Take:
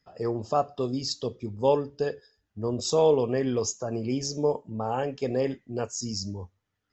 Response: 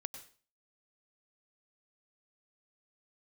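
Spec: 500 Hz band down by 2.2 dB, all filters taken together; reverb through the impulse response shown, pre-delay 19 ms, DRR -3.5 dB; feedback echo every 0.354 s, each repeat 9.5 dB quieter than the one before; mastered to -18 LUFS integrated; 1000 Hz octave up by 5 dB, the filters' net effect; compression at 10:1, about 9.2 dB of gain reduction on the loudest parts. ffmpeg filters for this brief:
-filter_complex "[0:a]equalizer=f=500:t=o:g=-4.5,equalizer=f=1k:t=o:g=8.5,acompressor=threshold=-25dB:ratio=10,aecho=1:1:354|708|1062|1416:0.335|0.111|0.0365|0.012,asplit=2[a][b];[1:a]atrim=start_sample=2205,adelay=19[c];[b][c]afir=irnorm=-1:irlink=0,volume=6dB[d];[a][d]amix=inputs=2:normalize=0,volume=8.5dB"

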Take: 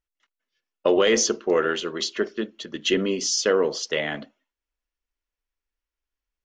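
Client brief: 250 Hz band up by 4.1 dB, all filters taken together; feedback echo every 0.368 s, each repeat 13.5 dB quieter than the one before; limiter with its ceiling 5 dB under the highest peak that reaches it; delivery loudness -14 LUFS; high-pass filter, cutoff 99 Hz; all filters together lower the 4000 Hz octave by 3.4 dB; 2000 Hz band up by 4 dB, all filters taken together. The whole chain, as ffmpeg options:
-af "highpass=99,equalizer=f=250:t=o:g=6,equalizer=f=2k:t=o:g=6.5,equalizer=f=4k:t=o:g=-7.5,alimiter=limit=-10.5dB:level=0:latency=1,aecho=1:1:368|736:0.211|0.0444,volume=9.5dB"

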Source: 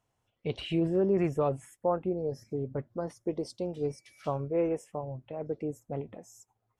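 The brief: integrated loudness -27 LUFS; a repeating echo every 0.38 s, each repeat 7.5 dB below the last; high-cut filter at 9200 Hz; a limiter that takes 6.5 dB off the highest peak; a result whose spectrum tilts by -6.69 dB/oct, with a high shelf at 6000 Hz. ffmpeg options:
-af "lowpass=9.2k,highshelf=f=6k:g=5,alimiter=limit=-23.5dB:level=0:latency=1,aecho=1:1:380|760|1140|1520|1900:0.422|0.177|0.0744|0.0312|0.0131,volume=7.5dB"

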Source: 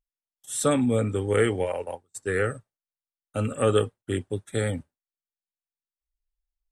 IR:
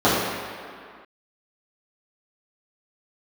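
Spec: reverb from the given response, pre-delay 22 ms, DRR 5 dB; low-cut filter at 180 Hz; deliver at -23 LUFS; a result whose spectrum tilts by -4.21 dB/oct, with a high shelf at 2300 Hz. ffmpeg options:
-filter_complex "[0:a]highpass=180,highshelf=f=2.3k:g=-5.5,asplit=2[a][b];[1:a]atrim=start_sample=2205,adelay=22[c];[b][c]afir=irnorm=-1:irlink=0,volume=-29dB[d];[a][d]amix=inputs=2:normalize=0,volume=2.5dB"

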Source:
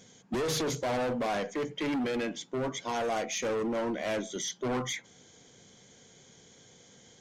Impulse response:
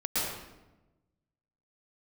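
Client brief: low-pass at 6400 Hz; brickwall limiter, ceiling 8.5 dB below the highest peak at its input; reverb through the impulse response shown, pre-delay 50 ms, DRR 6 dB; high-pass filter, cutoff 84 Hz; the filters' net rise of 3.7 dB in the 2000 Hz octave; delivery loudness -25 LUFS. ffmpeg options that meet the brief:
-filter_complex "[0:a]highpass=84,lowpass=6.4k,equalizer=f=2k:t=o:g=4.5,alimiter=level_in=6.5dB:limit=-24dB:level=0:latency=1,volume=-6.5dB,asplit=2[a][b];[1:a]atrim=start_sample=2205,adelay=50[c];[b][c]afir=irnorm=-1:irlink=0,volume=-15dB[d];[a][d]amix=inputs=2:normalize=0,volume=11dB"

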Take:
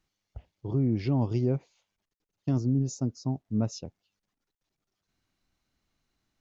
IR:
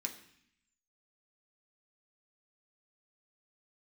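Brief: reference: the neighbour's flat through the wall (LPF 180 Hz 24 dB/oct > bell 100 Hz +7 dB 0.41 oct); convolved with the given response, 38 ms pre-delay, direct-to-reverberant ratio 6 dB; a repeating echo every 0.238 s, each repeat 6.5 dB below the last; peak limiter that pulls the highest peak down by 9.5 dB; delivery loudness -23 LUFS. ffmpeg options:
-filter_complex "[0:a]alimiter=level_in=1.5dB:limit=-24dB:level=0:latency=1,volume=-1.5dB,aecho=1:1:238|476|714|952|1190|1428:0.473|0.222|0.105|0.0491|0.0231|0.0109,asplit=2[a][b];[1:a]atrim=start_sample=2205,adelay=38[c];[b][c]afir=irnorm=-1:irlink=0,volume=-5.5dB[d];[a][d]amix=inputs=2:normalize=0,lowpass=f=180:w=0.5412,lowpass=f=180:w=1.3066,equalizer=f=100:t=o:w=0.41:g=7,volume=12dB"

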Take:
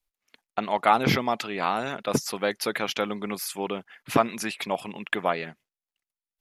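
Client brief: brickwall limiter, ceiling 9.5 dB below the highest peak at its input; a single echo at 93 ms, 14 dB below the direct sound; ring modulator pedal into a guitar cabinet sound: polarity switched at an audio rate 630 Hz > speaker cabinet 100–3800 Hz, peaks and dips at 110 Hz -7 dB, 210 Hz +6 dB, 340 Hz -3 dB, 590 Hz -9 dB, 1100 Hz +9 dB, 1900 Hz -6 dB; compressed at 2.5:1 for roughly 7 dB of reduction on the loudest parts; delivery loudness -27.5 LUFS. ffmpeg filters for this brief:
-af "acompressor=threshold=-25dB:ratio=2.5,alimiter=limit=-19dB:level=0:latency=1,aecho=1:1:93:0.2,aeval=exprs='val(0)*sgn(sin(2*PI*630*n/s))':c=same,highpass=100,equalizer=f=110:t=q:w=4:g=-7,equalizer=f=210:t=q:w=4:g=6,equalizer=f=340:t=q:w=4:g=-3,equalizer=f=590:t=q:w=4:g=-9,equalizer=f=1.1k:t=q:w=4:g=9,equalizer=f=1.9k:t=q:w=4:g=-6,lowpass=f=3.8k:w=0.5412,lowpass=f=3.8k:w=1.3066,volume=5dB"

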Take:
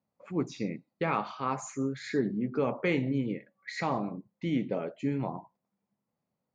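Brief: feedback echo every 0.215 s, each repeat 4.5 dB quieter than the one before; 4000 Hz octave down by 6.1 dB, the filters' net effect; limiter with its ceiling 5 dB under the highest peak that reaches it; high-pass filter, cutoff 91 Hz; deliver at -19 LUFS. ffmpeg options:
-af "highpass=91,equalizer=f=4k:t=o:g=-8,alimiter=limit=-21.5dB:level=0:latency=1,aecho=1:1:215|430|645|860|1075|1290|1505|1720|1935:0.596|0.357|0.214|0.129|0.0772|0.0463|0.0278|0.0167|0.01,volume=13.5dB"

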